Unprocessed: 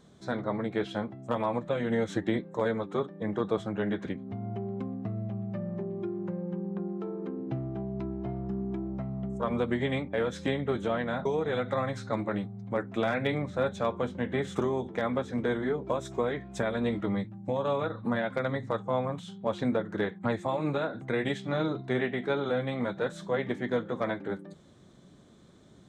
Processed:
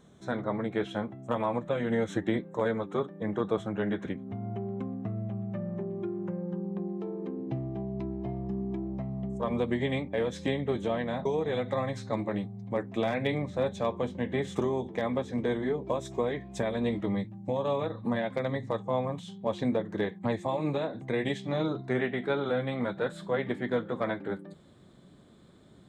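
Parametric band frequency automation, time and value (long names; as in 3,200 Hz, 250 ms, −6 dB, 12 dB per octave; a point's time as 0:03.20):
parametric band −14 dB 0.23 octaves
0:06.24 4,700 Hz
0:06.76 1,400 Hz
0:21.59 1,400 Hz
0:22.13 6,000 Hz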